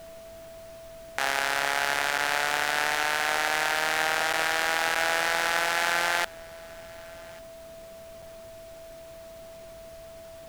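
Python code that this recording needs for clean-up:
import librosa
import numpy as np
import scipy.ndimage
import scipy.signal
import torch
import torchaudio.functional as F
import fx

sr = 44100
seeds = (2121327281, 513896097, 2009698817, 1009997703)

y = fx.notch(x, sr, hz=660.0, q=30.0)
y = fx.fix_interpolate(y, sr, at_s=(2.18, 4.33, 4.95, 8.22), length_ms=4.7)
y = fx.noise_reduce(y, sr, print_start_s=7.49, print_end_s=7.99, reduce_db=30.0)
y = fx.fix_echo_inverse(y, sr, delay_ms=1143, level_db=-24.0)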